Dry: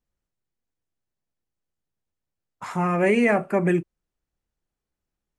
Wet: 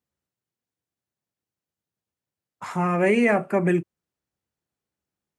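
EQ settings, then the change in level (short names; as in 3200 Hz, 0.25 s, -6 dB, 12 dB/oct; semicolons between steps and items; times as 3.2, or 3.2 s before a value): HPF 80 Hz 24 dB/oct; 0.0 dB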